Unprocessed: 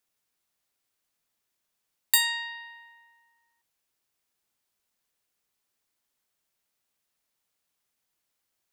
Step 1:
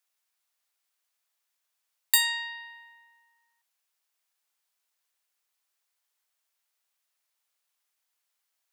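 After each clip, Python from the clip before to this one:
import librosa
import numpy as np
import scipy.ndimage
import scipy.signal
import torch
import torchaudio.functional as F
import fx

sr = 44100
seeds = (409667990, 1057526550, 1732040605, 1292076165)

y = scipy.signal.sosfilt(scipy.signal.butter(2, 710.0, 'highpass', fs=sr, output='sos'), x)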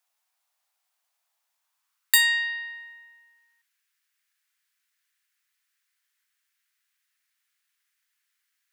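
y = fx.filter_sweep_highpass(x, sr, from_hz=730.0, to_hz=1700.0, start_s=1.5, end_s=2.34, q=2.5)
y = F.gain(torch.from_numpy(y), 1.5).numpy()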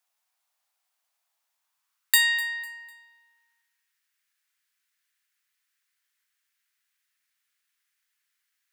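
y = fx.echo_feedback(x, sr, ms=250, feedback_pct=34, wet_db=-19)
y = F.gain(torch.from_numpy(y), -1.0).numpy()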